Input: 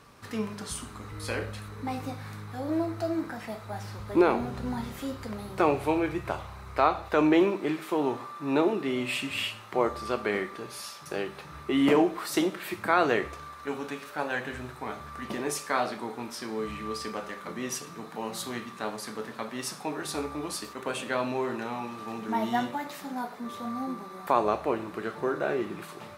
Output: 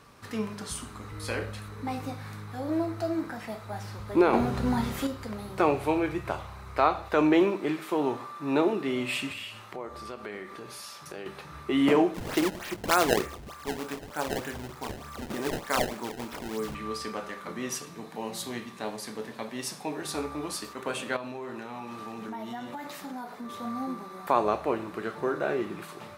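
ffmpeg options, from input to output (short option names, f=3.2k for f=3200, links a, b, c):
-filter_complex "[0:a]asettb=1/sr,asplit=3[a][b][c];[a]atrim=end=4.334[d];[b]atrim=start=4.33:end=5.07,asetpts=PTS-STARTPTS,afade=t=in:d=0.004:c=qsin,afade=t=out:st=0.736:d=0.004:c=qsin,acontrast=53[e];[c]atrim=start=5.066[f];[d][e]acrossfade=d=0.004:c1=hsin:c2=qsin[g];[g][f]acrossfade=d=0.004:c1=qsin:c2=hsin,asettb=1/sr,asplit=3[h][i][j];[h]atrim=end=9.324[k];[i]atrim=start=9.32:end=11.26,asetpts=PTS-STARTPTS,afade=t=in:d=0.004:c=qsin,afade=t=out:st=1.936:d=0.004:c=qsin,acompressor=threshold=-39dB:ratio=2.5:attack=3.2:release=140:knee=1:detection=peak[l];[j]atrim=start=11.256[m];[k][l]acrossfade=d=0.004:c1=hsin:c2=qsin[n];[n][m]acrossfade=d=0.004:c1=qsin:c2=hsin,asettb=1/sr,asplit=3[o][p][q];[o]atrim=end=12.144[r];[p]atrim=start=12.14:end=16.75,asetpts=PTS-STARTPTS,afade=t=in:d=0.004:c=qsin,afade=t=out:st=4.606:d=0.004:c=qsin,acrusher=samples=22:mix=1:aa=0.000001:lfo=1:lforange=35.2:lforate=3.3[s];[q]atrim=start=16.746[t];[r][s]acrossfade=d=0.004:c1=hsin:c2=qsin[u];[u][t]acrossfade=d=0.004:c1=qsin:c2=hsin,asettb=1/sr,asplit=3[v][w][x];[v]atrim=end=17.854[y];[w]atrim=start=17.85:end=20.05,asetpts=PTS-STARTPTS,afade=t=in:d=0.004:c=qsin,afade=t=out:st=2.196:d=0.004:c=qsin,equalizer=f=1.3k:w=3:g=-8[z];[x]atrim=start=20.046[aa];[y][z]acrossfade=d=0.004:c1=hsin:c2=qsin[ab];[ab][aa]acrossfade=d=0.004:c1=qsin:c2=hsin,asettb=1/sr,asplit=3[ac][ad][ae];[ac]atrim=end=21.164[af];[ad]atrim=start=21.16:end=23.5,asetpts=PTS-STARTPTS,afade=t=in:d=0.004:c=qsin,afade=t=out:st=2.336:d=0.004:c=qsin,acompressor=threshold=-34dB:ratio=6:attack=3.2:release=140:knee=1:detection=peak[ag];[ae]atrim=start=23.496[ah];[af][ag]acrossfade=d=0.004:c1=hsin:c2=qsin[ai];[ai][ah]acrossfade=d=0.004:c1=qsin:c2=hsin"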